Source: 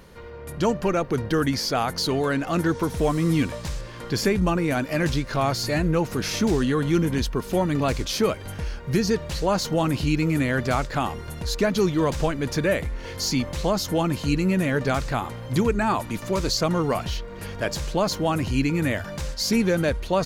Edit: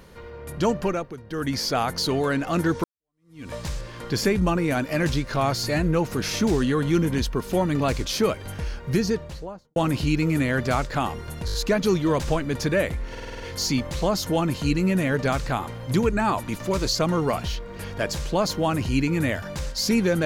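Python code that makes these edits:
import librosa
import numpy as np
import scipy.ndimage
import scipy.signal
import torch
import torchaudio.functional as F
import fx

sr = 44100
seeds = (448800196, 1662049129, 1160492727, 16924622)

y = fx.studio_fade_out(x, sr, start_s=8.89, length_s=0.87)
y = fx.edit(y, sr, fx.fade_down_up(start_s=0.81, length_s=0.8, db=-15.0, fade_s=0.35),
    fx.fade_in_span(start_s=2.84, length_s=0.69, curve='exp'),
    fx.stutter(start_s=11.46, slice_s=0.02, count=5),
    fx.stutter(start_s=13.02, slice_s=0.05, count=7), tone=tone)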